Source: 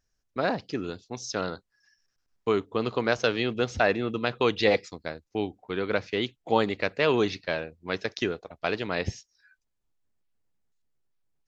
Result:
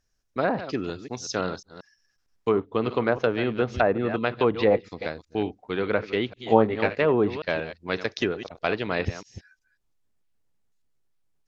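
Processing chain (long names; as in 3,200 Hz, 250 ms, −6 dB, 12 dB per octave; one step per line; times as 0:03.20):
delay that plays each chunk backwards 181 ms, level −12.5 dB
treble cut that deepens with the level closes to 1,100 Hz, closed at −19.5 dBFS
0:06.35–0:07.01: double-tracking delay 18 ms −4.5 dB
level +2.5 dB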